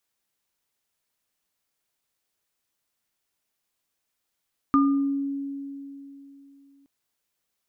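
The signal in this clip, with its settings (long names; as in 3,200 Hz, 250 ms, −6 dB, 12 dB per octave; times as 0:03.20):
inharmonic partials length 2.12 s, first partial 278 Hz, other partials 1,210 Hz, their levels −1.5 dB, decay 3.21 s, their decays 0.52 s, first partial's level −16 dB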